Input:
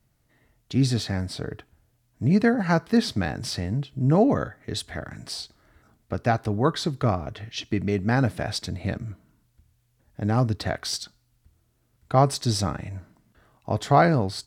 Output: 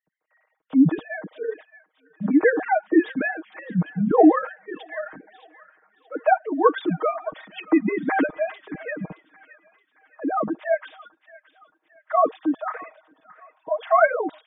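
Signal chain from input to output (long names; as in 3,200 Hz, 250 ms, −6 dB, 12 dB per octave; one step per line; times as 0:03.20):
three sine waves on the formant tracks
low-pass filter 2,800 Hz 12 dB per octave
comb filter 6.4 ms, depth 90%
gate on every frequency bin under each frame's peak −30 dB strong
on a send: delay with a high-pass on its return 622 ms, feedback 43%, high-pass 1,500 Hz, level −12.5 dB
on the sum: one half of a high-frequency compander decoder only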